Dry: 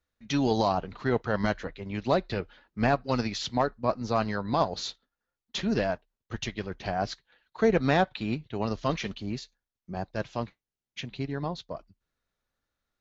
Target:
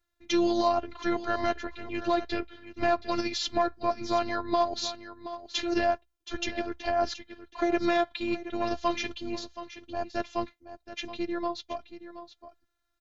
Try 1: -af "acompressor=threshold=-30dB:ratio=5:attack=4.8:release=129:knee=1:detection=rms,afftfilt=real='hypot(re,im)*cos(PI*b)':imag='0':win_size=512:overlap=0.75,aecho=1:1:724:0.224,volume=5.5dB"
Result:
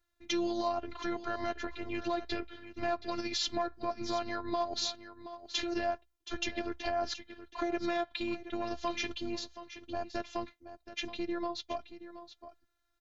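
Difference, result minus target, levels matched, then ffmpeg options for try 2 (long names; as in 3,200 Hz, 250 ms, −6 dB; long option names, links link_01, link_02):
downward compressor: peak gain reduction +7.5 dB
-af "acompressor=threshold=-20.5dB:ratio=5:attack=4.8:release=129:knee=1:detection=rms,afftfilt=real='hypot(re,im)*cos(PI*b)':imag='0':win_size=512:overlap=0.75,aecho=1:1:724:0.224,volume=5.5dB"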